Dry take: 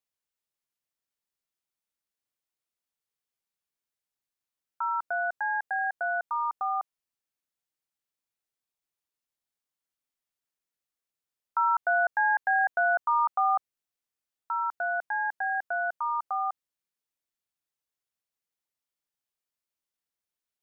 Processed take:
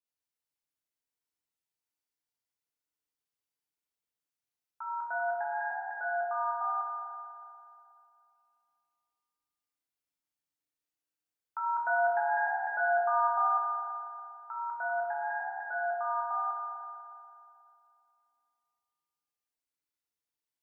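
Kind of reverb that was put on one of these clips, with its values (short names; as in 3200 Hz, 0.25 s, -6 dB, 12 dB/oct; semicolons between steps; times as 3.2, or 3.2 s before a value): FDN reverb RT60 2.6 s, high-frequency decay 0.9×, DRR -5.5 dB; gain -9.5 dB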